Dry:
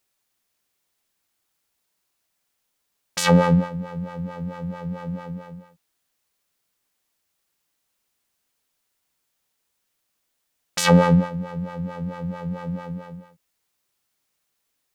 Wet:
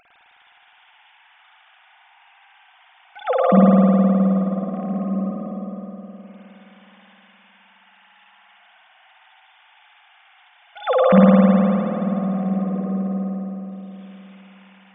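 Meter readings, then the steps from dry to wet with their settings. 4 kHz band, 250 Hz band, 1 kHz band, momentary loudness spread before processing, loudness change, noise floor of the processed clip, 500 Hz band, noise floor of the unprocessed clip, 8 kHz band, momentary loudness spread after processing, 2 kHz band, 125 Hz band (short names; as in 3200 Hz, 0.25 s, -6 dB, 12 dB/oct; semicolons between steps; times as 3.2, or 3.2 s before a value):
n/a, +7.5 dB, +3.5 dB, 18 LU, +4.5 dB, -54 dBFS, +6.5 dB, -76 dBFS, under -40 dB, 20 LU, -3.5 dB, +2.0 dB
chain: sine-wave speech; upward compressor, threshold -34 dBFS; spring tank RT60 3.4 s, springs 52 ms, chirp 30 ms, DRR -7 dB; gain -3.5 dB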